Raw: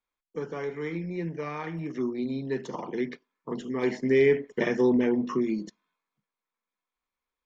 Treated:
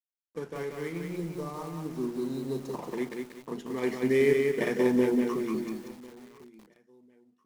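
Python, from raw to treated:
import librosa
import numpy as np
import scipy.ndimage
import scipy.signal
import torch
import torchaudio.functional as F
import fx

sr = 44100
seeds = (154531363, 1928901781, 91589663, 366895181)

y = fx.cvsd(x, sr, bps=64000)
y = fx.spec_erase(y, sr, start_s=1.17, length_s=1.58, low_hz=1300.0, high_hz=3700.0)
y = np.sign(y) * np.maximum(np.abs(y) - 10.0 ** (-50.5 / 20.0), 0.0)
y = fx.echo_feedback(y, sr, ms=1046, feedback_pct=27, wet_db=-22.5)
y = fx.echo_crushed(y, sr, ms=185, feedback_pct=35, bits=8, wet_db=-3.5)
y = F.gain(torch.from_numpy(y), -2.5).numpy()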